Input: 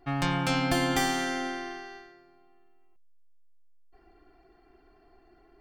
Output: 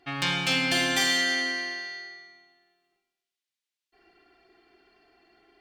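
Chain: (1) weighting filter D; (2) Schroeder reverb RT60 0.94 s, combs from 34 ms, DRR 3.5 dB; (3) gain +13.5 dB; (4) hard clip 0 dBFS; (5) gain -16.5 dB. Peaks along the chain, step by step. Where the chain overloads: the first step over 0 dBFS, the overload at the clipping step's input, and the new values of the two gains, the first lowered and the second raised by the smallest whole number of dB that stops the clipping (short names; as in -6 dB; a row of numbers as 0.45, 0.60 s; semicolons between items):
-6.0, -5.5, +8.0, 0.0, -16.5 dBFS; step 3, 8.0 dB; step 3 +5.5 dB, step 5 -8.5 dB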